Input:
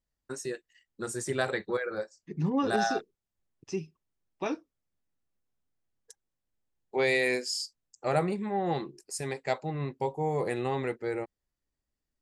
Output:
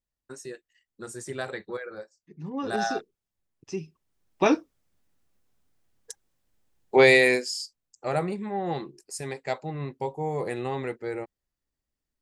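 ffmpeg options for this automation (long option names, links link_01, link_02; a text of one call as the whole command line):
ffmpeg -i in.wav -af "volume=19dB,afade=type=out:start_time=1.79:duration=0.6:silence=0.421697,afade=type=in:start_time=2.39:duration=0.46:silence=0.251189,afade=type=in:start_time=3.79:duration=0.64:silence=0.281838,afade=type=out:start_time=6.95:duration=0.58:silence=0.266073" out.wav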